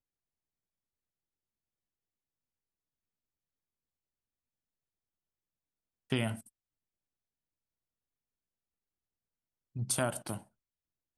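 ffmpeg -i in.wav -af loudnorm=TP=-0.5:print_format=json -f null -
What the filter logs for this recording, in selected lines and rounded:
"input_i" : "-35.2",
"input_tp" : "-15.8",
"input_lra" : "3.6",
"input_thresh" : "-46.1",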